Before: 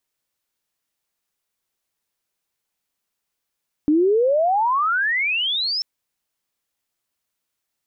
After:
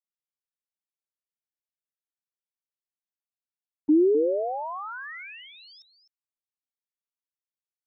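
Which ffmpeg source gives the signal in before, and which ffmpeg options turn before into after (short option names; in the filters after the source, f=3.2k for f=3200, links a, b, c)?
-f lavfi -i "aevalsrc='pow(10,(-13-7.5*t/1.94)/20)*sin(2*PI*290*1.94/log(5400/290)*(exp(log(5400/290)*t/1.94)-1))':d=1.94:s=44100"
-filter_complex "[0:a]agate=range=-28dB:threshold=-19dB:ratio=16:detection=peak,acrossover=split=430[a][b];[b]acompressor=threshold=-39dB:ratio=2.5[c];[a][c]amix=inputs=2:normalize=0,aecho=1:1:256:0.266"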